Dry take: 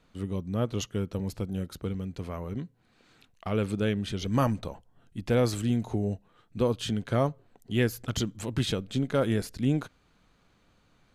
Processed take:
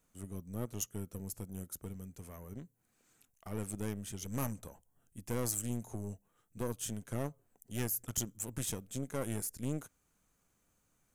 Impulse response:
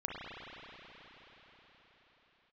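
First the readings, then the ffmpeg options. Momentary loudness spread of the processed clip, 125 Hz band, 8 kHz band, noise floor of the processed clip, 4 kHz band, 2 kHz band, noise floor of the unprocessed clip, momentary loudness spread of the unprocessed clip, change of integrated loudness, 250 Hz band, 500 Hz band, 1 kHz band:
14 LU, −11.0 dB, +4.0 dB, −76 dBFS, −13.0 dB, −12.5 dB, −66 dBFS, 13 LU, −10.0 dB, −12.0 dB, −13.5 dB, −12.5 dB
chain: -af "equalizer=frequency=4000:width=1.5:gain=-2.5,aeval=exprs='(tanh(12.6*val(0)+0.8)-tanh(0.8))/12.6':channel_layout=same,aexciter=amount=9.4:drive=3.2:freq=6000,volume=-7.5dB"

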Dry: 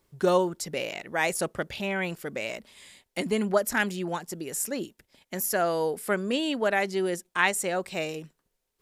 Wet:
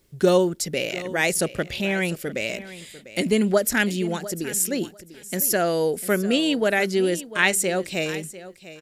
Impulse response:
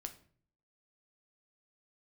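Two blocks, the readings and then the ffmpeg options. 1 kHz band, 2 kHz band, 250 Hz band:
0.0 dB, +4.5 dB, +7.0 dB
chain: -af "equalizer=frequency=990:width_type=o:width=1.1:gain=-10.5,aecho=1:1:697|1394:0.158|0.0254,volume=7.5dB"

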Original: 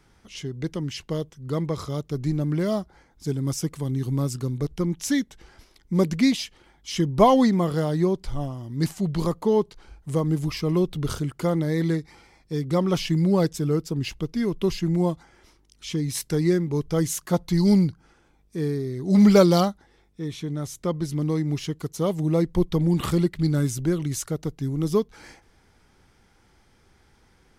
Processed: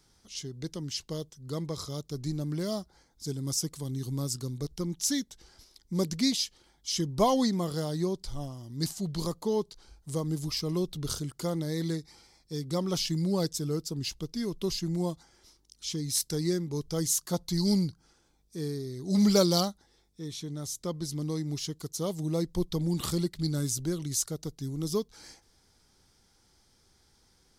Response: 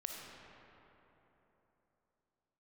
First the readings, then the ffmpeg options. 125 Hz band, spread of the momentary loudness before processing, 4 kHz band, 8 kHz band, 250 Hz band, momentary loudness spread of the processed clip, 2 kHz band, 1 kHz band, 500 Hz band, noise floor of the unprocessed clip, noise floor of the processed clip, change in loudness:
−8.0 dB, 12 LU, +1.0 dB, +2.5 dB, −8.0 dB, 11 LU, −10.0 dB, −8.5 dB, −8.0 dB, −60 dBFS, −67 dBFS, −7.0 dB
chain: -af "highshelf=frequency=3300:width_type=q:width=1.5:gain=9,volume=-8dB"

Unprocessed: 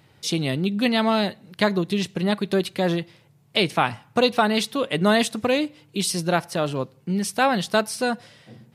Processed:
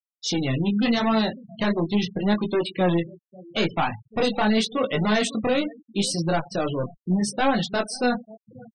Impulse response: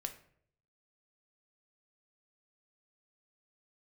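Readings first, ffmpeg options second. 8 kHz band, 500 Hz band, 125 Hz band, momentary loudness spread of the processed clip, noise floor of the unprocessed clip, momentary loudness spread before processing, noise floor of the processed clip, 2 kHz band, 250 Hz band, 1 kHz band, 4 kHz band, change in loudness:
−2.5 dB, −2.0 dB, +0.5 dB, 6 LU, −57 dBFS, 7 LU, below −85 dBFS, −3.0 dB, +0.5 dB, −2.5 dB, −2.5 dB, −1.0 dB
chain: -filter_complex "[0:a]asoftclip=type=hard:threshold=-20.5dB,equalizer=frequency=10000:width=5.5:gain=-7.5,aecho=1:1:541:0.0944,flanger=delay=18:depth=6.4:speed=0.8,asplit=2[link_01][link_02];[1:a]atrim=start_sample=2205,afade=type=out:start_time=0.22:duration=0.01,atrim=end_sample=10143[link_03];[link_02][link_03]afir=irnorm=-1:irlink=0,volume=-4.5dB[link_04];[link_01][link_04]amix=inputs=2:normalize=0,deesser=0.4,afftfilt=real='re*gte(hypot(re,im),0.0316)':imag='im*gte(hypot(re,im),0.0316)':win_size=1024:overlap=0.75,volume=1.5dB"

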